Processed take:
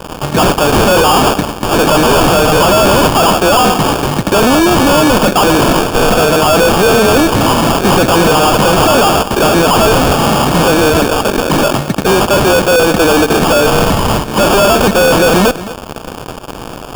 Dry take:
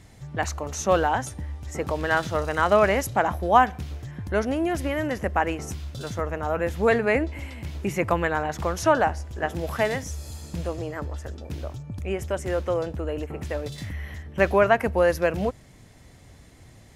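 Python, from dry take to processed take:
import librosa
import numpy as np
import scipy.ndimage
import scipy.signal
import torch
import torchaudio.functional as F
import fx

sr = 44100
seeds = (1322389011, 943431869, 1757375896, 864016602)

p1 = scipy.signal.sosfilt(scipy.signal.butter(4, 190.0, 'highpass', fs=sr, output='sos'), x)
p2 = fx.band_shelf(p1, sr, hz=3800.0, db=12.5, octaves=1.2)
p3 = fx.fuzz(p2, sr, gain_db=42.0, gate_db=-50.0)
p4 = fx.sample_hold(p3, sr, seeds[0], rate_hz=2000.0, jitter_pct=0)
p5 = p4 + fx.echo_single(p4, sr, ms=222, db=-16.0, dry=0)
y = F.gain(torch.from_numpy(p5), 6.0).numpy()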